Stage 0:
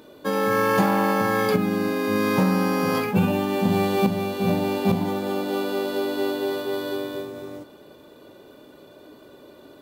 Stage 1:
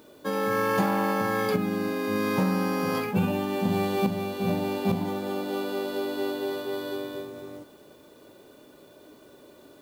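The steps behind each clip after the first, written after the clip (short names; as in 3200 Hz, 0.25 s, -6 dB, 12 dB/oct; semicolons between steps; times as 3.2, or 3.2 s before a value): added noise white -61 dBFS; gain -4.5 dB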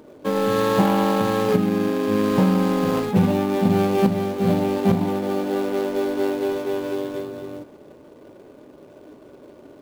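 median filter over 25 samples; gain +7.5 dB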